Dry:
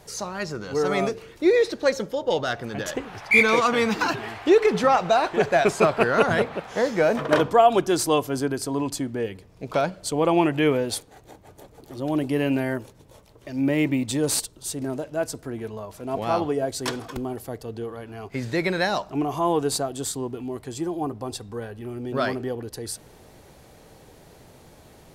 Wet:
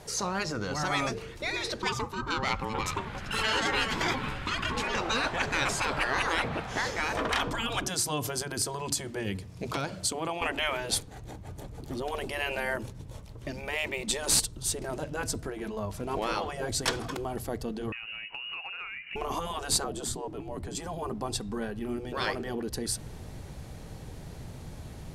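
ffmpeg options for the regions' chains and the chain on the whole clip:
-filter_complex "[0:a]asettb=1/sr,asplit=3[a][b][c];[a]atrim=end=1.824[d];[b]atrim=start=1.82:end=4.95,asetpts=PTS-STARTPTS,afade=t=in:d=0.004:c=qsin,afade=t=out:st=3.126:d=0.004:c=qsin,bandreject=f=5.1k:w=7.5,aeval=exprs='val(0)*sin(2*PI*660*n/s)':c=same[e];[c]atrim=start=4.946[f];[d][e]acrossfade=d=0.004:c1=hsin:c2=qsin[g];[g][f]acrossfade=d=0.004:c1=qsin:c2=hsin,asettb=1/sr,asplit=3[h][i][j];[h]atrim=end=7.864[k];[i]atrim=start=7.86:end=10.42,asetpts=PTS-STARTPTS,afade=t=in:d=0.004:c=qsin,afade=t=out:st=2.556:d=0.004:c=qsin,equalizer=f=11k:t=o:w=2.7:g=6.5,acompressor=threshold=-25dB:ratio=10:attack=3.2:release=140:knee=1:detection=peak,highpass=85[l];[j]atrim=start=10.416[m];[k][l]acrossfade=d=0.004:c1=hsin:c2=qsin[n];[n][m]acrossfade=d=0.004:c1=qsin:c2=hsin,asettb=1/sr,asplit=3[o][p][q];[o]atrim=end=17.924[r];[p]atrim=start=17.92:end=19.16,asetpts=PTS-STARTPTS,afade=t=in:d=0.004:c=qsin,afade=t=out:st=1.236:d=0.004:c=qsin,lowpass=f=2.6k:t=q:w=0.5098,lowpass=f=2.6k:t=q:w=0.6013,lowpass=f=2.6k:t=q:w=0.9,lowpass=f=2.6k:t=q:w=2.563,afreqshift=-3000,acompressor=threshold=-37dB:ratio=12:attack=3.2:release=140:knee=1:detection=peak[s];[q]atrim=start=19.156[t];[r][s]acrossfade=d=0.004:c1=hsin:c2=qsin[u];[u][t]acrossfade=d=0.004:c1=qsin:c2=hsin,asettb=1/sr,asplit=3[v][w][x];[v]atrim=end=19.844[y];[w]atrim=start=19.84:end=20.75,asetpts=PTS-STARTPTS,afade=t=in:d=0.004:c=qsin,afade=t=out:st=0.906:d=0.004:c=qsin,tiltshelf=f=870:g=6.5,afreqshift=-43[z];[x]atrim=start=20.746[aa];[y][z]acrossfade=d=0.004:c1=hsin:c2=qsin[ab];[ab][aa]acrossfade=d=0.004:c1=qsin:c2=hsin,lowpass=12k,asubboost=boost=3:cutoff=220,afftfilt=real='re*lt(hypot(re,im),0.2)':imag='im*lt(hypot(re,im),0.2)':win_size=1024:overlap=0.75,volume=2dB"

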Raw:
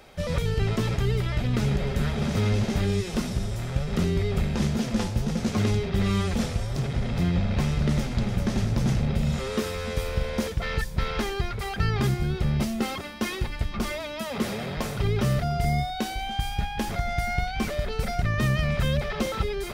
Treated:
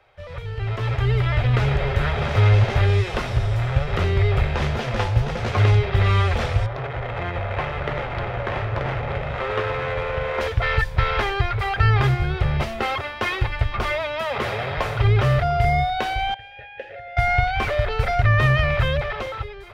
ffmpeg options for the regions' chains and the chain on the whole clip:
-filter_complex "[0:a]asettb=1/sr,asplit=3[a][b][c];[a]atrim=end=6.664[d];[b]atrim=start=6.66:end=10.41,asetpts=PTS-STARTPTS,afade=t=in:d=0.004:c=qsin,afade=t=out:st=3.746:d=0.004:c=qsin,bass=f=250:g=-11,treble=f=4k:g=-5,aecho=1:1:933:0.531,atrim=end_sample=165375,adynamicsmooth=sensitivity=6.5:basefreq=1.7k[e];[c]atrim=start=10.406[f];[d][e]acrossfade=d=0.004:c1=hsin:c2=qsin[g];[g][f]acrossfade=d=0.004:c1=qsin:c2=hsin,asettb=1/sr,asplit=3[h][i][j];[h]atrim=end=16.344[k];[i]atrim=start=16.34:end=17.17,asetpts=PTS-STARTPTS,afade=t=in:d=0.004:c=qsin,afade=t=out:st=0.826:d=0.004:c=qsin,asplit=3[l][m][n];[l]bandpass=f=530:t=q:w=8,volume=0dB[o];[m]bandpass=f=1.84k:t=q:w=8,volume=-6dB[p];[n]bandpass=f=2.48k:t=q:w=8,volume=-9dB[q];[o][p][q]amix=inputs=3:normalize=0,lowshelf=f=130:g=5.5[r];[j]atrim=start=17.166[s];[k][r]acrossfade=d=0.004:c1=hsin:c2=qsin[t];[t][s]acrossfade=d=0.004:c1=qsin:c2=hsin,acrossover=split=430 3300:gain=0.158 1 0.112[u][v][w];[u][v][w]amix=inputs=3:normalize=0,dynaudnorm=f=260:g=7:m=15.5dB,lowshelf=f=150:t=q:w=3:g=9,volume=-4.5dB"

